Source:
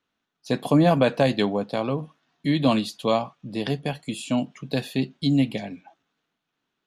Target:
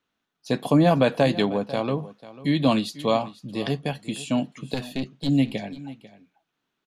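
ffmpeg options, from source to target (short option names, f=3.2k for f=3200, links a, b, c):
-filter_complex "[0:a]asettb=1/sr,asplit=3[a][b][c];[a]atrim=end=4.744[d];[b]atrim=start=4.74:end=5.29,asetpts=PTS-STARTPTS,afade=t=in:d=0.004:c=qsin,afade=t=out:st=0.546:d=0.004:c=qsin,aeval=exprs='(tanh(8.91*val(0)+0.65)-tanh(0.65))/8.91':c=same[e];[c]atrim=start=5.286[f];[d][e]acrossfade=d=0.004:c1=hsin:c2=qsin[g];[g][f]acrossfade=d=0.004:c1=qsin:c2=hsin,aecho=1:1:494:0.133"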